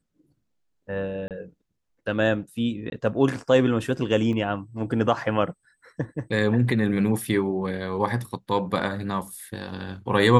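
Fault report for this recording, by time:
1.28–1.31 gap 28 ms
2.9–2.92 gap 21 ms
4.33 gap 2.7 ms

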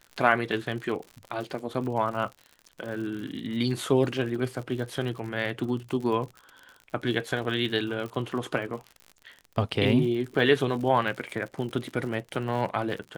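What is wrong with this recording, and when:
crackle 72/s -35 dBFS

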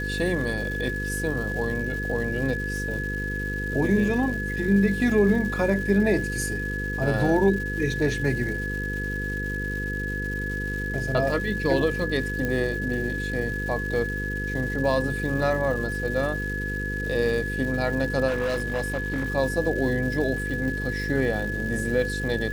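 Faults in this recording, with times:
buzz 50 Hz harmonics 10 -31 dBFS
crackle 520/s -35 dBFS
tone 1700 Hz -30 dBFS
12.45 pop -15 dBFS
18.27–19.3 clipped -22 dBFS

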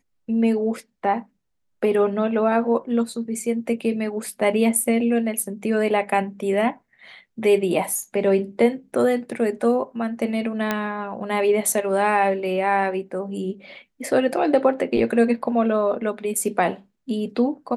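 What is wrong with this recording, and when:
10.71 pop -8 dBFS

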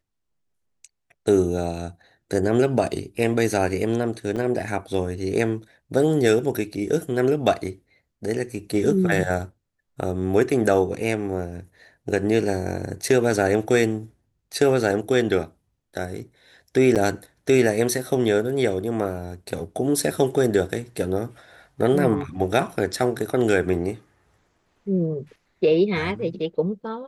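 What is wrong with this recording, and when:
4.36–4.37 gap 6.3 ms
16.95–16.96 gap 7.6 ms

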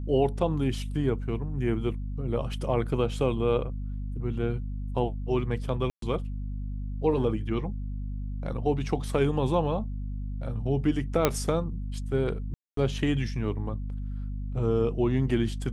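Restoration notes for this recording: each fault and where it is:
hum 50 Hz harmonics 5 -33 dBFS
5.9–6.02 gap 0.123 s
11.25 pop -6 dBFS
12.54–12.77 gap 0.233 s

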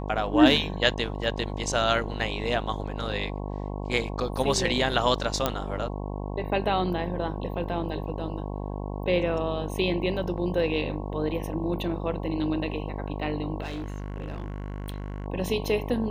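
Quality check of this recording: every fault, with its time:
buzz 50 Hz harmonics 22 -33 dBFS
1.24 gap 2.2 ms
5.46 pop -9 dBFS
13.62–15.26 clipped -29.5 dBFS

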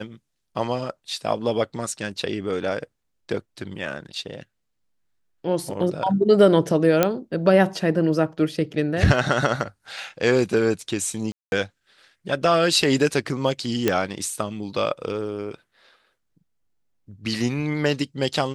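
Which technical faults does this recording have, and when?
7.03 pop -3 dBFS
11.32–11.52 gap 0.201 s
13.88 pop -5 dBFS

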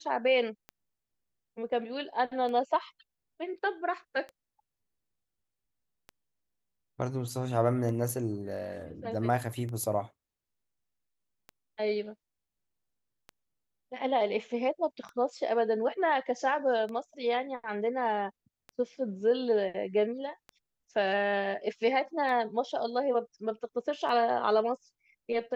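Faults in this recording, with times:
tick 33 1/3 rpm -28 dBFS

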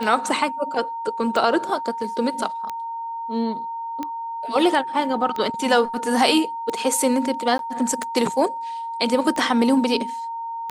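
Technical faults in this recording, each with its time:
tick 45 rpm
tone 920 Hz -27 dBFS
7.58–7.59 gap 12 ms

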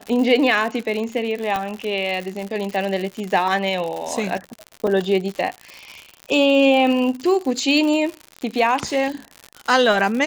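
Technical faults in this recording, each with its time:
crackle 110/s -25 dBFS
1.56 pop -10 dBFS
4.87 gap 4 ms

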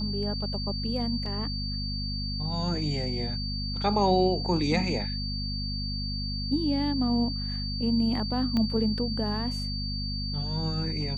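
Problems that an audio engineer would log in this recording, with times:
hum 50 Hz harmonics 5 -33 dBFS
tone 4600 Hz -34 dBFS
1.26 gap 2.3 ms
8.57 pop -17 dBFS

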